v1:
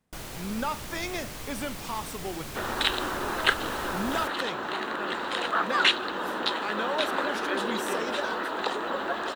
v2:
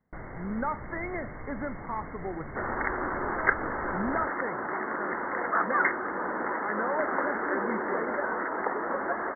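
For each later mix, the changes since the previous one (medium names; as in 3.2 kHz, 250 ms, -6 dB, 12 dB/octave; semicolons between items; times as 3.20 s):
master: add brick-wall FIR low-pass 2.2 kHz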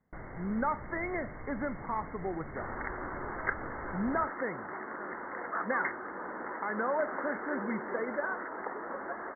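first sound -3.5 dB; second sound -8.5 dB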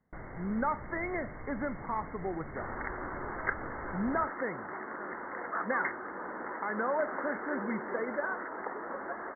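no change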